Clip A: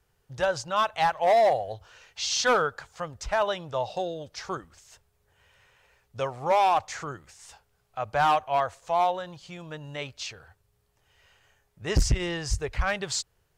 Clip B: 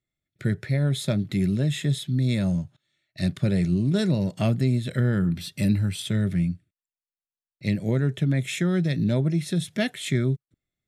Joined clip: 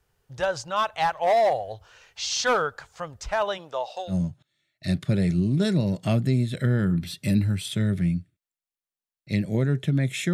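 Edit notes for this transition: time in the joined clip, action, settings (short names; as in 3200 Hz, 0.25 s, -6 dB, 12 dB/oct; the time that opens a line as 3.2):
clip A
3.57–4.15 HPF 200 Hz -> 940 Hz
4.11 switch to clip B from 2.45 s, crossfade 0.08 s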